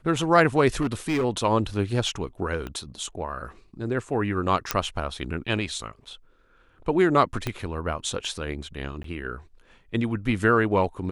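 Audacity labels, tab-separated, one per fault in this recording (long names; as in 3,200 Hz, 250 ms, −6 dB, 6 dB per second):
0.810000	1.250000	clipping −20.5 dBFS
2.670000	2.670000	click −21 dBFS
4.710000	4.710000	click −5 dBFS
7.470000	7.470000	click −13 dBFS
9.030000	9.040000	drop-out 13 ms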